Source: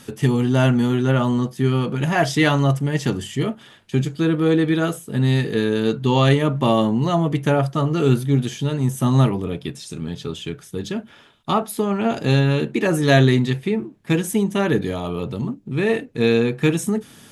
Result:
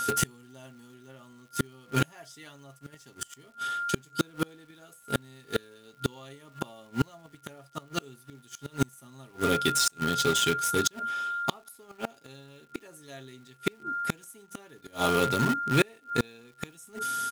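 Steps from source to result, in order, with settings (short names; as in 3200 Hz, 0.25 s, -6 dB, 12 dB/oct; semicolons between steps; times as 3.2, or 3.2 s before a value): tone controls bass -8 dB, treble +13 dB; comb 7.5 ms, depth 37%; whine 1400 Hz -29 dBFS; in parallel at -9 dB: bit-crush 4-bit; on the sum: flipped gate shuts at -10 dBFS, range -34 dB; crackle 130/s -51 dBFS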